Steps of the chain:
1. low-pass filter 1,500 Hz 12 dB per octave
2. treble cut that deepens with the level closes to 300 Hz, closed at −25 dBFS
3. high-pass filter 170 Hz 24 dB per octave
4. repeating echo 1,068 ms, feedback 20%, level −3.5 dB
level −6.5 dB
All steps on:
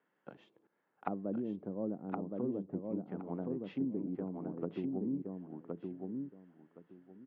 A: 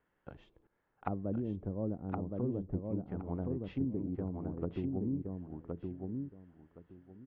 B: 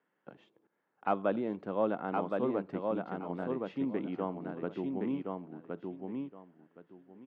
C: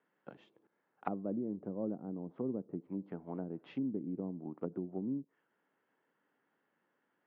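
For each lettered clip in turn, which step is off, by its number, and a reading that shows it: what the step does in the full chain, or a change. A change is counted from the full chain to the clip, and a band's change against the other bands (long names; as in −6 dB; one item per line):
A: 3, 125 Hz band +7.5 dB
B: 2, 2 kHz band +9.0 dB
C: 4, change in momentary loudness spread −13 LU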